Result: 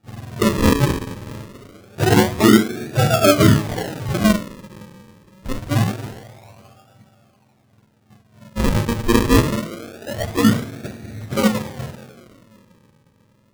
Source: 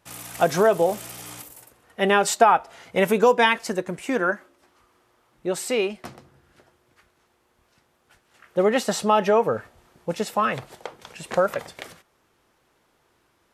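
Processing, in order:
frequency axis turned over on the octave scale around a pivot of 540 Hz
coupled-rooms reverb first 0.43 s, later 3.3 s, from −20 dB, DRR 0 dB
sample-and-hold swept by an LFO 42×, swing 100% 0.25 Hz
level +2 dB

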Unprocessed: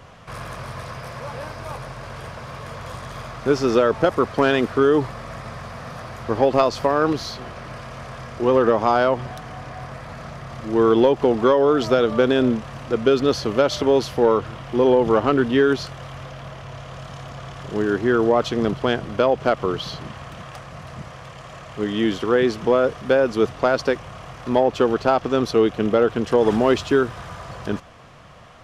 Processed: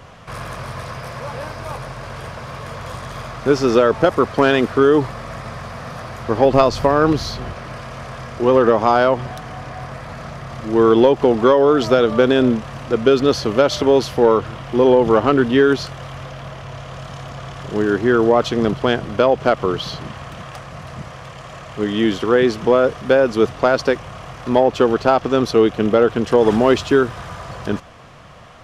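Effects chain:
0:06.45–0:07.53: low-shelf EQ 130 Hz +10.5 dB
level +3.5 dB

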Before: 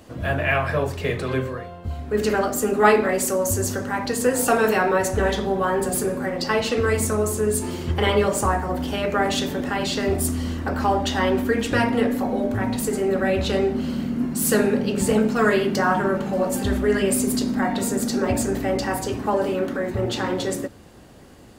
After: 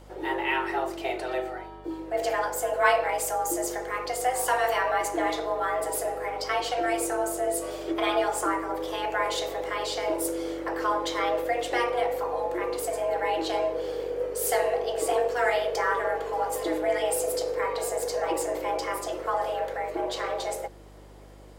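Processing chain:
frequency shifter +250 Hz
mains hum 50 Hz, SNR 22 dB
level −6 dB

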